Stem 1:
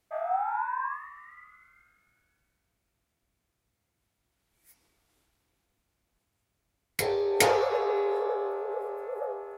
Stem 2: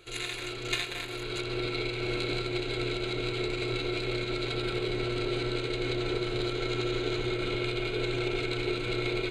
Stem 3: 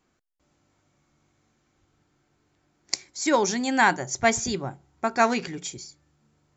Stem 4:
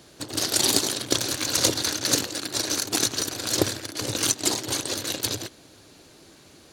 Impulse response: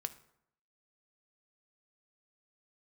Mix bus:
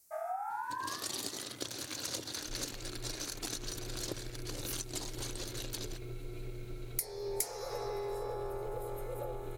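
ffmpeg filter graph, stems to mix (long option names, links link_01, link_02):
-filter_complex "[0:a]aexciter=amount=4.9:drive=9.5:freq=4800,volume=-5dB[link_01];[1:a]aemphasis=mode=reproduction:type=riaa,alimiter=limit=-19dB:level=0:latency=1:release=497,adelay=2400,volume=-14dB[link_02];[3:a]adelay=500,volume=-13dB[link_03];[link_01][link_02][link_03]amix=inputs=3:normalize=0,acompressor=threshold=-35dB:ratio=5"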